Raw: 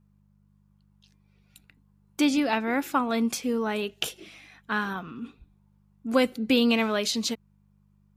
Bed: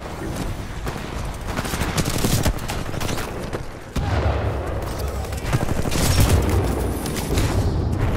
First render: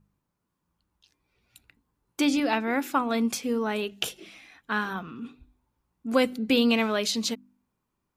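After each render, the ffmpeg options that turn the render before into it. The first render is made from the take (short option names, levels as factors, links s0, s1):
-af "bandreject=f=50:t=h:w=4,bandreject=f=100:t=h:w=4,bandreject=f=150:t=h:w=4,bandreject=f=200:t=h:w=4,bandreject=f=250:t=h:w=4,bandreject=f=300:t=h:w=4"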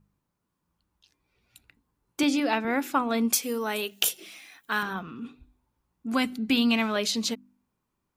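-filter_complex "[0:a]asettb=1/sr,asplit=3[s0][s1][s2];[s0]atrim=end=2.234[s3];[s1]atrim=start=2.23:end=2.65,asetpts=PTS-STARTPTS,afade=t=in:d=0.004:c=qsin,afade=t=out:st=0.416:d=0.004:c=qsin,highpass=180[s4];[s2]atrim=start=2.646[s5];[s3][s4]acrossfade=d=0.004:c1=hsin:c2=qsin[s6];[s6][s5]acrossfade=d=0.004:c1=qsin:c2=hsin,asettb=1/sr,asplit=3[s7][s8][s9];[s7]atrim=end=3.334[s10];[s8]atrim=start=3.33:end=4.83,asetpts=PTS-STARTPTS,afade=t=in:d=0.004:c=qsin,afade=t=out:st=1.496:d=0.004:c=qsin,aemphasis=mode=production:type=bsi[s11];[s9]atrim=start=4.826[s12];[s10][s11]acrossfade=d=0.004:c1=hsin:c2=qsin[s13];[s13][s12]acrossfade=d=0.004:c1=qsin:c2=hsin,asettb=1/sr,asplit=3[s14][s15][s16];[s14]atrim=end=6.084[s17];[s15]atrim=start=6.08:end=6.96,asetpts=PTS-STARTPTS,afade=t=in:d=0.004:c=qsin,afade=t=out:st=0.876:d=0.004:c=qsin,equalizer=f=500:t=o:w=0.28:g=-15[s18];[s16]atrim=start=6.956[s19];[s17][s18]acrossfade=d=0.004:c1=hsin:c2=qsin[s20];[s20][s19]acrossfade=d=0.004:c1=qsin:c2=hsin"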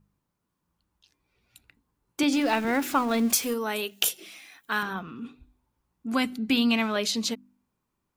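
-filter_complex "[0:a]asettb=1/sr,asplit=3[s0][s1][s2];[s0]atrim=end=2.324[s3];[s1]atrim=start=2.32:end=3.54,asetpts=PTS-STARTPTS,afade=t=in:d=0.004:c=qsin,afade=t=out:st=1.216:d=0.004:c=qsin,aeval=exprs='val(0)+0.5*0.02*sgn(val(0))':c=same[s4];[s2]atrim=start=3.536[s5];[s3][s4]acrossfade=d=0.004:c1=hsin:c2=qsin[s6];[s6][s5]acrossfade=d=0.004:c1=qsin:c2=hsin"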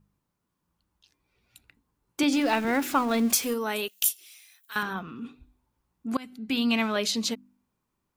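-filter_complex "[0:a]asettb=1/sr,asplit=3[s0][s1][s2];[s0]atrim=end=3.884[s3];[s1]atrim=start=3.88:end=4.76,asetpts=PTS-STARTPTS,afade=t=in:d=0.004:c=qsin,afade=t=out:st=0.876:d=0.004:c=qsin,aderivative[s4];[s2]atrim=start=4.756[s5];[s3][s4]acrossfade=d=0.004:c1=hsin:c2=qsin[s6];[s6][s5]acrossfade=d=0.004:c1=qsin:c2=hsin,asplit=2[s7][s8];[s7]atrim=end=6.17,asetpts=PTS-STARTPTS,afade=t=out:st=6.166:d=0.004:c=hsin:silence=0.0707946[s9];[s8]atrim=start=6.17,asetpts=PTS-STARTPTS,afade=t=in:d=0.63:silence=0.0707946[s10];[s9][s10]concat=n=2:v=0:a=1"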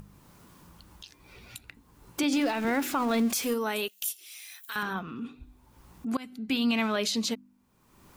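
-af "alimiter=limit=0.112:level=0:latency=1:release=48,acompressor=mode=upward:threshold=0.0224:ratio=2.5"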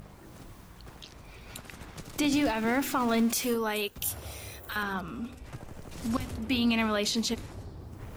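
-filter_complex "[1:a]volume=0.075[s0];[0:a][s0]amix=inputs=2:normalize=0"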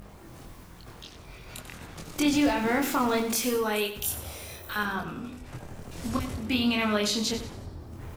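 -filter_complex "[0:a]asplit=2[s0][s1];[s1]adelay=24,volume=0.75[s2];[s0][s2]amix=inputs=2:normalize=0,aecho=1:1:93|186|279|372:0.266|0.0958|0.0345|0.0124"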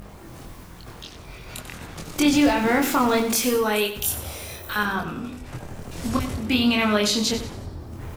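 -af "volume=1.88"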